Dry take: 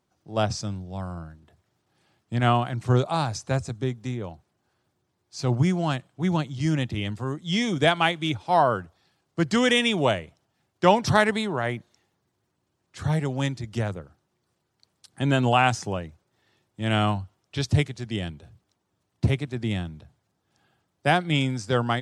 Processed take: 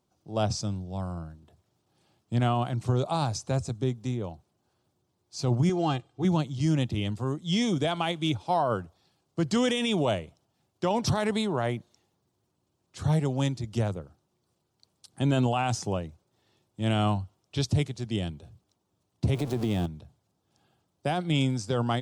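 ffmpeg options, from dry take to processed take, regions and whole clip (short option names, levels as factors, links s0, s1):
-filter_complex "[0:a]asettb=1/sr,asplit=3[s0][s1][s2];[s0]atrim=end=5.694[s3];[s1]atrim=start=5.69:end=6.25,asetpts=PTS-STARTPTS,afade=t=in:d=0.004:c=qsin,afade=t=out:st=0.556:d=0.004:c=qsin,deesser=0.85,lowpass=6300,aecho=1:1:2.5:0.72,atrim=end_sample=24696[s4];[s2]atrim=start=6.246[s5];[s3][s4]acrossfade=d=0.004:c1=hsin:c2=qsin[s6];[s6][s5]acrossfade=d=0.004:c1=qsin:c2=hsin,asettb=1/sr,asplit=3[s7][s8][s9];[s7]atrim=end=19.344[s10];[s8]atrim=start=19.34:end=19.86,asetpts=PTS-STARTPTS,afade=t=in:d=0.004:c=qsin,afade=t=out:st=0.516:d=0.004:c=qsin,aeval=exprs='val(0)+0.5*0.0211*sgn(val(0))':c=same,equalizer=f=500:w=0.5:g=6.5,acompressor=threshold=0.0708:ratio=5:attack=3.2:release=140:knee=1:detection=peak[s11];[s9]atrim=start=19.856[s12];[s10][s11]acrossfade=d=0.004:c1=hsin:c2=qsin[s13];[s13][s12]acrossfade=d=0.004:c1=qsin:c2=hsin,equalizer=f=1800:t=o:w=0.94:g=-8.5,alimiter=limit=0.15:level=0:latency=1:release=21"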